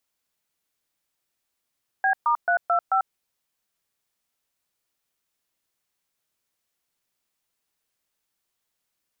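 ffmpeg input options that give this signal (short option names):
-f lavfi -i "aevalsrc='0.0944*clip(min(mod(t,0.219),0.093-mod(t,0.219))/0.002,0,1)*(eq(floor(t/0.219),0)*(sin(2*PI*770*mod(t,0.219))+sin(2*PI*1633*mod(t,0.219)))+eq(floor(t/0.219),1)*(sin(2*PI*941*mod(t,0.219))+sin(2*PI*1209*mod(t,0.219)))+eq(floor(t/0.219),2)*(sin(2*PI*697*mod(t,0.219))+sin(2*PI*1477*mod(t,0.219)))+eq(floor(t/0.219),3)*(sin(2*PI*697*mod(t,0.219))+sin(2*PI*1336*mod(t,0.219)))+eq(floor(t/0.219),4)*(sin(2*PI*770*mod(t,0.219))+sin(2*PI*1336*mod(t,0.219))))':d=1.095:s=44100"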